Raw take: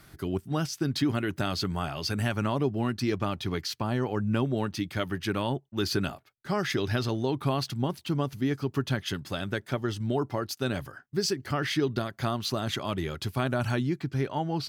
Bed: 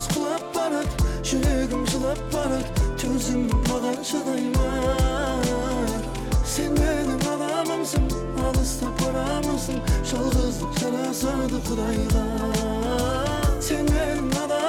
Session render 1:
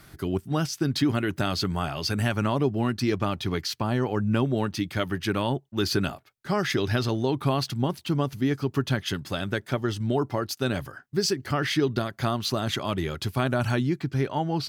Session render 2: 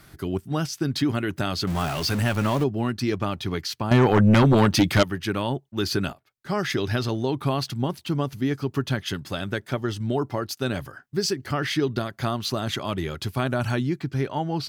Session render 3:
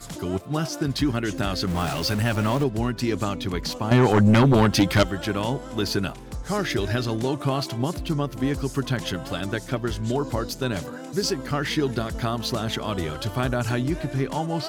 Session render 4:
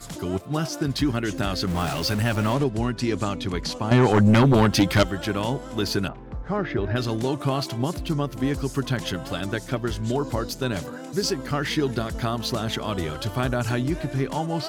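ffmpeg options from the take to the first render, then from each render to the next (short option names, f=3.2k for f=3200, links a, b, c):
-af "volume=3dB"
-filter_complex "[0:a]asettb=1/sr,asplit=3[a][b][c];[a]atrim=end=1.674[d];[b]atrim=start=1.67:end=2.64,asetpts=PTS-STARTPTS,afade=t=in:d=0.004:c=qsin,afade=t=out:st=0.966:d=0.004:c=qsin,aeval=exprs='val(0)+0.5*0.0398*sgn(val(0))':c=same[e];[c]atrim=start=2.636[f];[d][e]acrossfade=d=0.004:c1=hsin:c2=qsin[g];[g][f]acrossfade=d=0.004:c1=qsin:c2=hsin,asettb=1/sr,asplit=3[h][i][j];[h]atrim=end=3.914[k];[i]atrim=start=3.91:end=5.03,asetpts=PTS-STARTPTS,afade=t=in:d=0.004:c=qsin,afade=t=out:st=1.116:d=0.004:c=qsin,aeval=exprs='0.266*sin(PI/2*2.51*val(0)/0.266)':c=same[l];[j]atrim=start=5.026[m];[k][l]acrossfade=d=0.004:c1=hsin:c2=qsin[n];[n][m]acrossfade=d=0.004:c1=qsin:c2=hsin,asplit=2[o][p];[o]atrim=end=6.13,asetpts=PTS-STARTPTS,afade=t=out:st=6.126:d=0.004:c=hsin:silence=0.237137[q];[p]atrim=start=6.13,asetpts=PTS-STARTPTS,afade=t=in:d=0.44:silence=0.237137[r];[q][r]concat=n=2:v=0:a=1"
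-filter_complex "[1:a]volume=-12dB[a];[0:a][a]amix=inputs=2:normalize=0"
-filter_complex "[0:a]asettb=1/sr,asplit=3[a][b][c];[a]atrim=end=2.534[d];[b]atrim=start=2.53:end=4.14,asetpts=PTS-STARTPTS,afade=t=in:d=0.004:c=qsin,afade=t=out:st=1.606:d=0.004:c=qsin,lowpass=f=11k:w=0.5412,lowpass=f=11k:w=1.3066[e];[c]atrim=start=4.136[f];[d][e]acrossfade=d=0.004:c1=hsin:c2=qsin[g];[g][f]acrossfade=d=0.004:c1=qsin:c2=hsin,asettb=1/sr,asplit=3[h][i][j];[h]atrim=end=6.084[k];[i]atrim=start=6.08:end=6.96,asetpts=PTS-STARTPTS,afade=t=in:d=0.004:c=qsin,afade=t=out:st=0.876:d=0.004:c=qsin,lowpass=1.7k[l];[j]atrim=start=6.956[m];[k][l]acrossfade=d=0.004:c1=hsin:c2=qsin[n];[n][m]acrossfade=d=0.004:c1=qsin:c2=hsin"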